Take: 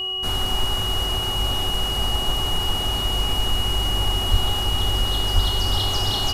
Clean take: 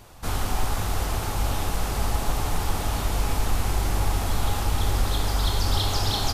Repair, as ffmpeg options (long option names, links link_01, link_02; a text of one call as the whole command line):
ffmpeg -i in.wav -filter_complex "[0:a]bandreject=frequency=377.2:width_type=h:width=4,bandreject=frequency=754.4:width_type=h:width=4,bandreject=frequency=1131.6:width_type=h:width=4,bandreject=frequency=2900:width=30,asplit=3[link_01][link_02][link_03];[link_01]afade=type=out:start_time=4.3:duration=0.02[link_04];[link_02]highpass=frequency=140:width=0.5412,highpass=frequency=140:width=1.3066,afade=type=in:start_time=4.3:duration=0.02,afade=type=out:start_time=4.42:duration=0.02[link_05];[link_03]afade=type=in:start_time=4.42:duration=0.02[link_06];[link_04][link_05][link_06]amix=inputs=3:normalize=0,asplit=3[link_07][link_08][link_09];[link_07]afade=type=out:start_time=5.34:duration=0.02[link_10];[link_08]highpass=frequency=140:width=0.5412,highpass=frequency=140:width=1.3066,afade=type=in:start_time=5.34:duration=0.02,afade=type=out:start_time=5.46:duration=0.02[link_11];[link_09]afade=type=in:start_time=5.46:duration=0.02[link_12];[link_10][link_11][link_12]amix=inputs=3:normalize=0" out.wav